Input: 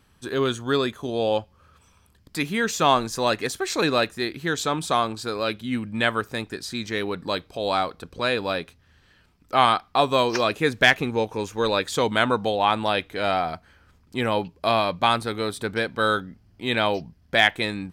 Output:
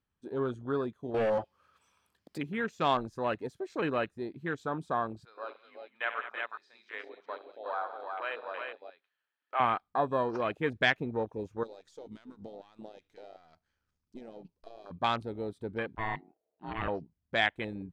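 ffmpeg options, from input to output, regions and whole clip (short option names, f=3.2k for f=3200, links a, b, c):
-filter_complex "[0:a]asettb=1/sr,asplit=3[a][b][c];[a]atrim=end=1.144[d];[b]atrim=start=1.14:end=2.38,asetpts=PTS-STARTPTS,afade=t=in:d=0.004:c=qsin,afade=t=out:st=1.236:d=0.004:c=qsin,highshelf=f=8.6k:g=10.5,asplit=2[e][f];[f]highpass=f=720:p=1,volume=23dB,asoftclip=type=tanh:threshold=-10.5dB[g];[e][g]amix=inputs=2:normalize=0,lowpass=f=6.9k:p=1,volume=-6dB,volume=17dB,asoftclip=hard,volume=-17dB[h];[c]atrim=start=2.376[i];[d][h]acrossfade=d=0.004:c1=hsin:c2=qsin[j];[j][i]acrossfade=d=0.004:c1=qsin:c2=hsin,asettb=1/sr,asplit=3[k][l][m];[k]atrim=end=5.254[n];[l]atrim=start=5.25:end=9.6,asetpts=PTS-STARTPTS,afade=t=in:d=0.004:c=qsin,afade=t=out:st=4.346:d=0.004:c=qsin,highpass=740,lowpass=4.1k,aecho=1:1:62|92|106|143|198|363:0.282|0.112|0.178|0.141|0.282|0.668,atrim=end_sample=191835[o];[m]atrim=start=9.596[p];[n][o]acrossfade=d=0.004:c1=hsin:c2=qsin[q];[q][p]acrossfade=d=0.004:c1=qsin:c2=hsin,asettb=1/sr,asplit=3[r][s][t];[r]atrim=end=11.634[u];[s]atrim=start=11.63:end=14.91,asetpts=PTS-STARTPTS,afade=t=in:d=0.004:c=qsin,afade=t=out:st=3.276:d=0.004:c=qsin,aeval=exprs='if(lt(val(0),0),0.447*val(0),val(0))':c=same,equalizer=f=6.1k:t=o:w=1.2:g=12,acompressor=threshold=-29dB:ratio=8:attack=3.2:release=140:knee=1:detection=peak[v];[t]atrim=start=14.906[w];[u][v]acrossfade=d=0.004:c1=hsin:c2=qsin[x];[x][w]acrossfade=d=0.004:c1=qsin:c2=hsin,asettb=1/sr,asplit=3[y][z][aa];[y]atrim=end=15.954[ab];[z]atrim=start=15.95:end=16.88,asetpts=PTS-STARTPTS,afade=t=in:d=0.004:c=qsin,afade=t=out:st=0.926:d=0.004:c=qsin,lowpass=f=3.8k:p=1,aeval=exprs='val(0)*sin(2*PI*550*n/s)':c=same[ac];[aa]atrim=start=16.876[ad];[ab][ac]acrossfade=d=0.004:c1=hsin:c2=qsin[ae];[ae][ad]acrossfade=d=0.004:c1=qsin:c2=hsin,afwtdn=0.0447,highshelf=f=5.6k:g=-9.5,volume=-8.5dB"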